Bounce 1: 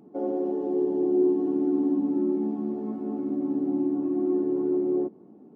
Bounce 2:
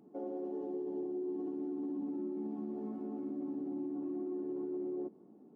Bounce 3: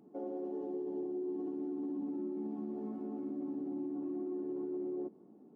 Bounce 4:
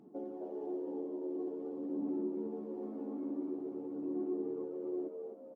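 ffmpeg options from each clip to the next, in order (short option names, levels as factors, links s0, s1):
-af "equalizer=f=84:w=1.4:g=-6.5,alimiter=level_in=1.12:limit=0.0631:level=0:latency=1:release=62,volume=0.891,volume=0.422"
-af anull
-filter_complex "[0:a]aphaser=in_gain=1:out_gain=1:delay=3.7:decay=0.43:speed=0.47:type=sinusoidal,asplit=2[s0][s1];[s1]asplit=4[s2][s3][s4][s5];[s2]adelay=257,afreqshift=85,volume=0.473[s6];[s3]adelay=514,afreqshift=170,volume=0.176[s7];[s4]adelay=771,afreqshift=255,volume=0.0646[s8];[s5]adelay=1028,afreqshift=340,volume=0.024[s9];[s6][s7][s8][s9]amix=inputs=4:normalize=0[s10];[s0][s10]amix=inputs=2:normalize=0,volume=0.708"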